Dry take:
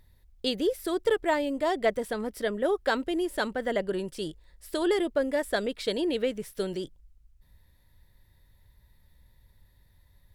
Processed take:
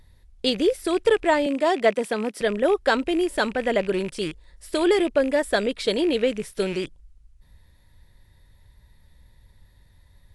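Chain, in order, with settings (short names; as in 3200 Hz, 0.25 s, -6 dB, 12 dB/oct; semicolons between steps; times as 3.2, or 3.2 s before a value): rattling part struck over -46 dBFS, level -32 dBFS; 1.46–2.41 steep high-pass 160 Hz; gain +6 dB; AAC 96 kbps 24000 Hz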